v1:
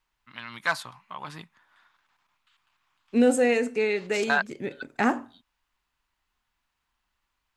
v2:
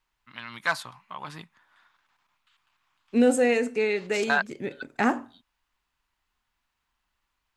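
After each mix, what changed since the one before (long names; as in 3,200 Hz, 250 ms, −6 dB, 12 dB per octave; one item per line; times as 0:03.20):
nothing changed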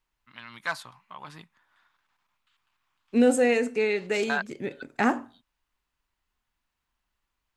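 first voice −4.5 dB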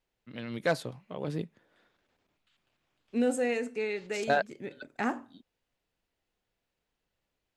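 first voice: add low shelf with overshoot 700 Hz +13 dB, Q 3
second voice −7.5 dB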